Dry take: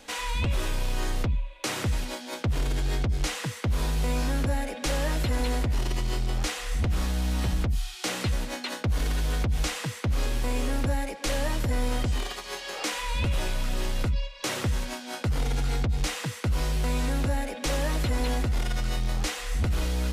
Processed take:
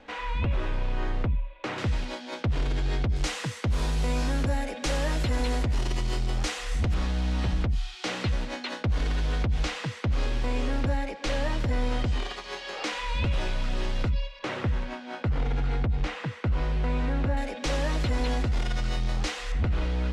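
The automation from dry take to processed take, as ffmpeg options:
-af "asetnsamples=n=441:p=0,asendcmd='1.78 lowpass f 4500;3.16 lowpass f 8100;6.94 lowpass f 4600;14.39 lowpass f 2500;17.37 lowpass f 5900;19.52 lowpass f 3000',lowpass=2.3k"

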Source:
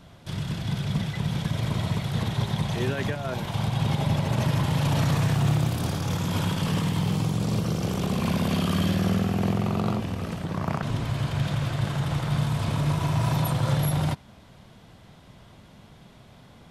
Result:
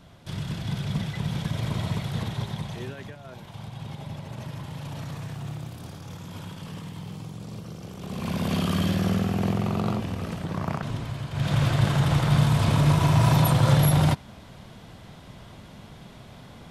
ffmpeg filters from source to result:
-af "volume=22.5dB,afade=t=out:st=2:d=1.06:silence=0.281838,afade=t=in:st=7.98:d=0.58:silence=0.251189,afade=t=out:st=10.58:d=0.72:silence=0.473151,afade=t=in:st=11.3:d=0.3:silence=0.251189"

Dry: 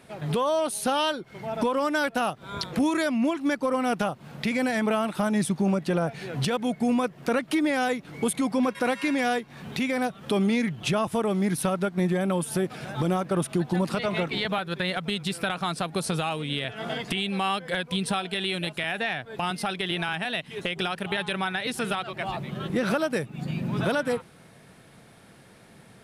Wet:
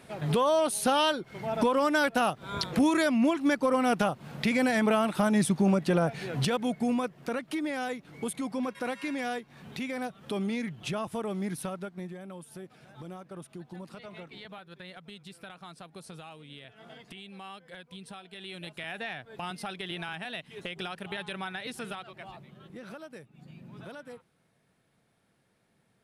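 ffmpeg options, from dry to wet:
-af "volume=9.5dB,afade=t=out:st=6.15:d=1.19:silence=0.398107,afade=t=out:st=11.46:d=0.71:silence=0.316228,afade=t=in:st=18.28:d=0.66:silence=0.334965,afade=t=out:st=21.66:d=0.9:silence=0.298538"

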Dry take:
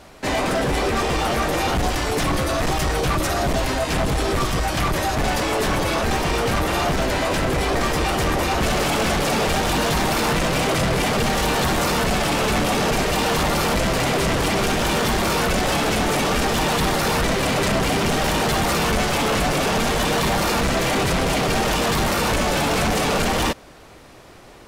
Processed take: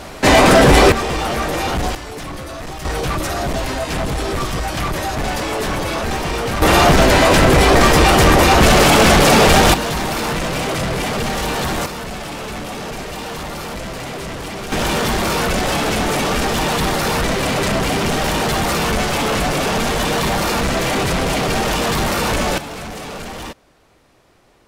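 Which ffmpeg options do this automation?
-af "asetnsamples=n=441:p=0,asendcmd='0.92 volume volume 1dB;1.95 volume volume -8dB;2.85 volume volume 0dB;6.62 volume volume 10dB;9.74 volume volume -0.5dB;11.86 volume volume -7.5dB;14.72 volume volume 2dB;22.58 volume volume -9.5dB',volume=12dB"

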